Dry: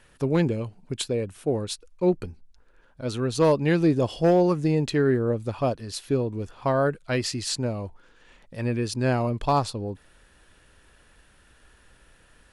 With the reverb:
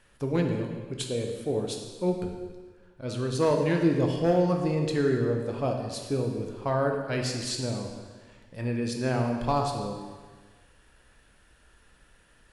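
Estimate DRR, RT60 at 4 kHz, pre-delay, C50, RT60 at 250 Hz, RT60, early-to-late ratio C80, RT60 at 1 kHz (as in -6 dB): 2.0 dB, 1.4 s, 6 ms, 4.0 dB, 1.4 s, 1.5 s, 6.0 dB, 1.5 s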